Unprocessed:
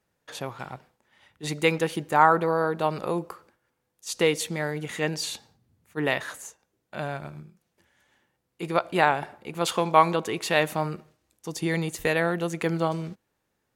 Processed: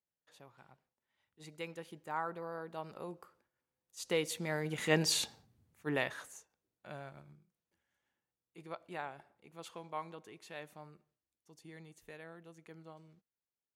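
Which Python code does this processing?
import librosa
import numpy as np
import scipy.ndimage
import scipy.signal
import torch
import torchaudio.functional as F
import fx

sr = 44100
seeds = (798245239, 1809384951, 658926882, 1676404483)

y = fx.doppler_pass(x, sr, speed_mps=8, closest_m=2.5, pass_at_s=5.18)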